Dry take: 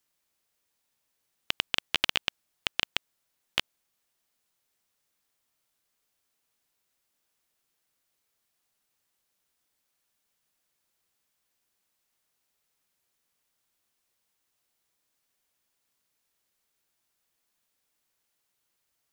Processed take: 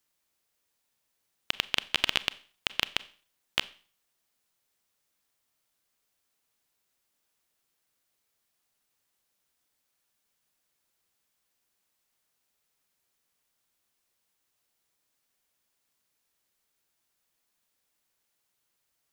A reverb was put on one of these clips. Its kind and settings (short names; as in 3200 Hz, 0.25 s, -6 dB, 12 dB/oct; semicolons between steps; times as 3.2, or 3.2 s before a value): Schroeder reverb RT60 0.43 s, combs from 29 ms, DRR 17 dB